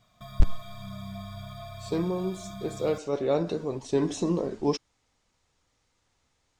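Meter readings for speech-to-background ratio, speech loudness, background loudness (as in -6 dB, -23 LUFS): 12.5 dB, -29.5 LUFS, -42.0 LUFS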